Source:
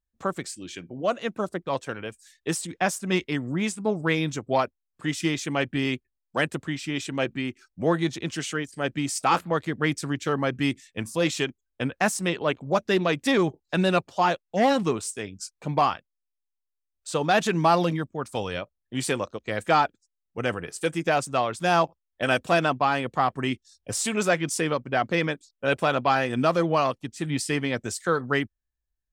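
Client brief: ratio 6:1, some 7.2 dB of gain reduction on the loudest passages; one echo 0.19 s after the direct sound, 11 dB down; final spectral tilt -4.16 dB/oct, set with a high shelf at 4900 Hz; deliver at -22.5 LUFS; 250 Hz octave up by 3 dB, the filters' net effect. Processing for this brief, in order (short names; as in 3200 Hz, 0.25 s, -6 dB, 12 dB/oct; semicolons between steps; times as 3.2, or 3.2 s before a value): bell 250 Hz +4 dB; high shelf 4900 Hz +6 dB; compressor 6:1, threshold -23 dBFS; echo 0.19 s -11 dB; gain +6 dB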